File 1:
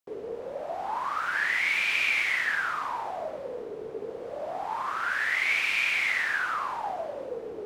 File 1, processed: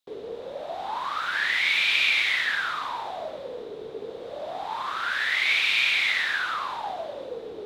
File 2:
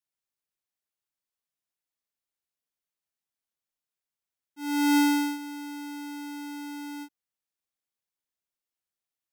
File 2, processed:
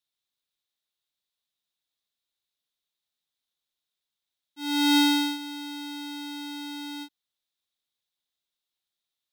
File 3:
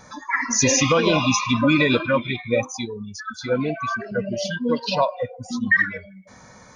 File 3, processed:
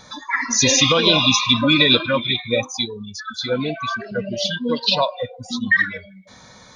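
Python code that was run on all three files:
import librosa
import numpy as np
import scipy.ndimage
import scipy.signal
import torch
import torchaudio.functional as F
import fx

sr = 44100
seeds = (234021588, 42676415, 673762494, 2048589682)

y = fx.peak_eq(x, sr, hz=3700.0, db=15.0, octaves=0.53)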